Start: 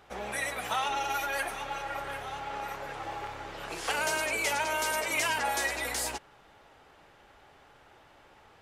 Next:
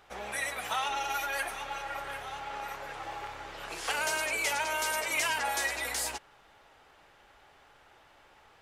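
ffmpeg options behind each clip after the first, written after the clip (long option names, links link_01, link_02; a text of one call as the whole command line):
ffmpeg -i in.wav -af "equalizer=frequency=170:width=0.31:gain=-6" out.wav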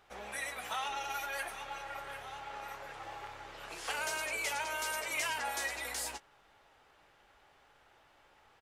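ffmpeg -i in.wav -filter_complex "[0:a]asplit=2[link_01][link_02];[link_02]adelay=20,volume=-13dB[link_03];[link_01][link_03]amix=inputs=2:normalize=0,volume=-5.5dB" out.wav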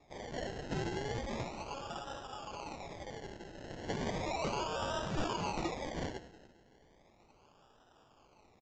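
ffmpeg -i in.wav -af "aecho=1:1:196|392|588|784:0.168|0.0739|0.0325|0.0143,acrusher=samples=29:mix=1:aa=0.000001:lfo=1:lforange=17.4:lforate=0.35,aresample=16000,aresample=44100" out.wav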